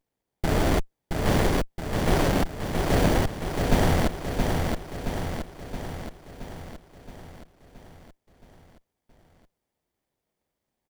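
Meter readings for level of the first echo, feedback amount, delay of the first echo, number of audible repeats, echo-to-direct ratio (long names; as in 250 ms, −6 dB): −4.0 dB, 58%, 672 ms, 7, −2.0 dB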